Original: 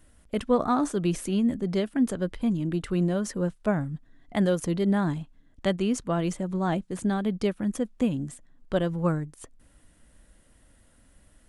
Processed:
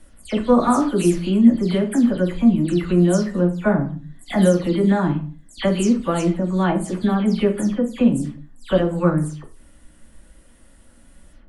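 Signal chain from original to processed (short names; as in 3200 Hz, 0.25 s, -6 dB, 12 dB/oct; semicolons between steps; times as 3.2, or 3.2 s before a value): spectral delay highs early, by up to 0.155 s; on a send: reverb, pre-delay 3 ms, DRR 4 dB; on the sum: gain +6 dB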